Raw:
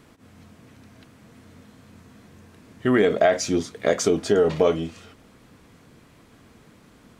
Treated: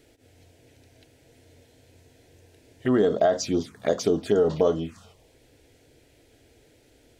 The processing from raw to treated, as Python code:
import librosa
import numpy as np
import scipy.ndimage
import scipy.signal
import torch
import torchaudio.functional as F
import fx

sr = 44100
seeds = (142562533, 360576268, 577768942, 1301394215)

y = fx.env_phaser(x, sr, low_hz=180.0, high_hz=2300.0, full_db=-17.5)
y = y * librosa.db_to_amplitude(-1.5)